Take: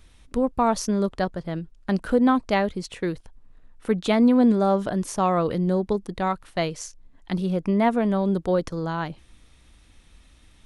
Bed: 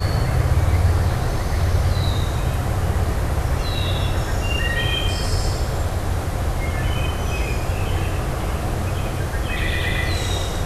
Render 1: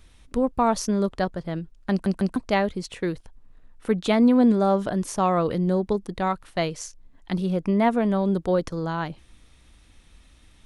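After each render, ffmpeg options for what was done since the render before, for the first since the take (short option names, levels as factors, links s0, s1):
-filter_complex "[0:a]asplit=4[s0][s1][s2][s3];[s0]atrim=end=2.062[s4];[s1]atrim=start=1.908:end=2.062[s5];[s2]atrim=start=1.908:end=2.062[s6];[s3]atrim=start=2.358[s7];[s4][s5]acrossfade=d=0.004:c1=hsin:c2=hsin[s8];[s8][s6]acrossfade=d=0.004:c1=hsin:c2=hsin[s9];[s9][s7]acrossfade=d=0.004:c1=hsin:c2=hsin"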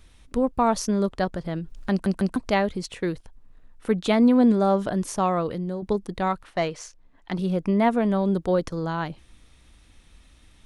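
-filter_complex "[0:a]asettb=1/sr,asplit=3[s0][s1][s2];[s0]atrim=end=1.344[s3];[s1]atrim=start=1.34:end=2.86,asetpts=PTS-STARTPTS,afade=t=in:d=0.004:c=qsin,afade=t=out:st=1.516:d=0.004:c=qsin,acompressor=mode=upward:threshold=0.0501:ratio=2.5:attack=3.2:release=140:knee=2.83:detection=peak[s4];[s2]atrim=start=2.856[s5];[s3][s4]acrossfade=d=0.004:c1=hsin:c2=qsin[s6];[s6][s5]acrossfade=d=0.004:c1=qsin:c2=hsin,asettb=1/sr,asplit=3[s7][s8][s9];[s7]atrim=end=6.434[s10];[s8]atrim=start=6.43:end=7.39,asetpts=PTS-STARTPTS,afade=t=in:d=0.004:c=qsin,afade=t=out:st=0.956:d=0.004:c=qsin,asplit=2[s11][s12];[s12]highpass=f=720:p=1,volume=3.16,asoftclip=type=tanh:threshold=0.211[s13];[s11][s13]amix=inputs=2:normalize=0,lowpass=f=2000:p=1,volume=0.501[s14];[s9]atrim=start=7.386[s15];[s10][s14]acrossfade=d=0.004:c1=hsin:c2=qsin[s16];[s16][s15]acrossfade=d=0.004:c1=qsin:c2=hsin,asplit=2[s17][s18];[s17]atrim=end=5.82,asetpts=PTS-STARTPTS,afade=t=out:st=5.13:d=0.69:silence=0.316228[s19];[s18]atrim=start=5.82,asetpts=PTS-STARTPTS,afade=t=in:d=0.004:c=hsin:silence=0.316228[s20];[s19][s20]concat=n=2:v=0:a=1"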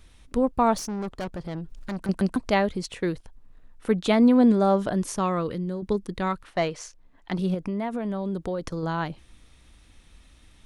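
-filter_complex "[0:a]asettb=1/sr,asplit=3[s0][s1][s2];[s0]atrim=end=0.774[s3];[s1]atrim=start=0.77:end=2.09,asetpts=PTS-STARTPTS,afade=t=in:d=0.004:c=qsin,afade=t=out:st=1.316:d=0.004:c=qsin,aeval=exprs='(tanh(25.1*val(0)+0.3)-tanh(0.3))/25.1':c=same[s4];[s2]atrim=start=2.086[s5];[s3][s4]acrossfade=d=0.004:c1=hsin:c2=qsin[s6];[s6][s5]acrossfade=d=0.004:c1=qsin:c2=hsin,asettb=1/sr,asplit=3[s7][s8][s9];[s7]atrim=end=5.124[s10];[s8]atrim=start=5.12:end=6.47,asetpts=PTS-STARTPTS,afade=t=in:d=0.004:c=qsin,afade=t=out:st=1.346:d=0.004:c=qsin,equalizer=f=720:w=2.3:g=-7.5[s11];[s9]atrim=start=6.466[s12];[s10][s11]acrossfade=d=0.004:c1=hsin:c2=qsin[s13];[s13][s12]acrossfade=d=0.004:c1=qsin:c2=hsin,asettb=1/sr,asplit=3[s14][s15][s16];[s14]atrim=end=7.544[s17];[s15]atrim=start=7.54:end=8.83,asetpts=PTS-STARTPTS,afade=t=in:d=0.004:c=qsin,afade=t=out:st=1.286:d=0.004:c=qsin,acompressor=threshold=0.0562:ratio=6:attack=3.2:release=140:knee=1:detection=peak[s18];[s16]atrim=start=8.826[s19];[s17][s18]acrossfade=d=0.004:c1=hsin:c2=qsin[s20];[s20][s19]acrossfade=d=0.004:c1=qsin:c2=hsin"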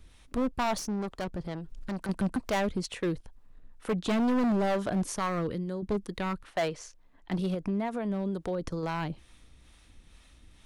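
-filter_complex "[0:a]acrossover=split=450[s0][s1];[s0]aeval=exprs='val(0)*(1-0.5/2+0.5/2*cos(2*PI*2.2*n/s))':c=same[s2];[s1]aeval=exprs='val(0)*(1-0.5/2-0.5/2*cos(2*PI*2.2*n/s))':c=same[s3];[s2][s3]amix=inputs=2:normalize=0,asoftclip=type=hard:threshold=0.0631"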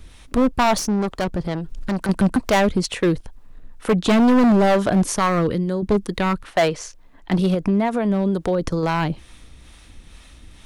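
-af "volume=3.76"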